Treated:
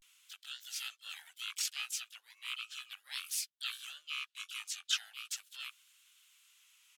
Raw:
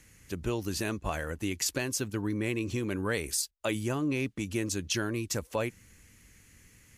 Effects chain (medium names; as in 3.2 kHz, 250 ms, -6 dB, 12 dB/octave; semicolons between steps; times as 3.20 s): ladder high-pass 2.6 kHz, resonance 60%; harmony voices -12 st -10 dB, +3 st -1 dB; vibrato 0.38 Hz 75 cents; trim +1 dB